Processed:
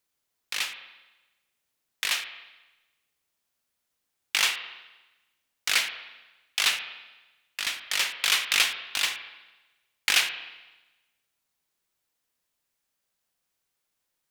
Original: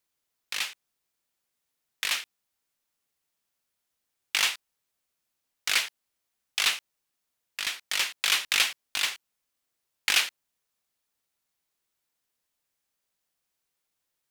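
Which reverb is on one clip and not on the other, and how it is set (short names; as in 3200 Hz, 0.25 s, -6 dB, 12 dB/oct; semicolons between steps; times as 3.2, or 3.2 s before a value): spring tank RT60 1.1 s, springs 33/50 ms, chirp 40 ms, DRR 8 dB; gain +1 dB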